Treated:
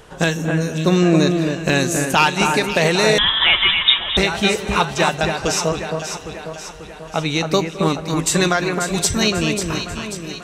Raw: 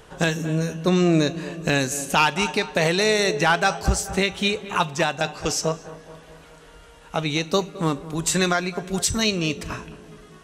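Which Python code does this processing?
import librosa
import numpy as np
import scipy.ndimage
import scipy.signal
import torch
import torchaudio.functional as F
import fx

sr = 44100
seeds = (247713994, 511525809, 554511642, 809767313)

y = fx.echo_alternate(x, sr, ms=270, hz=2300.0, feedback_pct=72, wet_db=-5)
y = fx.freq_invert(y, sr, carrier_hz=3700, at=(3.18, 4.17))
y = y * 10.0 ** (3.5 / 20.0)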